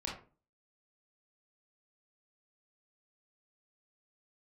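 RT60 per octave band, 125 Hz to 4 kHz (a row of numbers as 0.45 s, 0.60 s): 0.50 s, 0.45 s, 0.40 s, 0.35 s, 0.30 s, 0.20 s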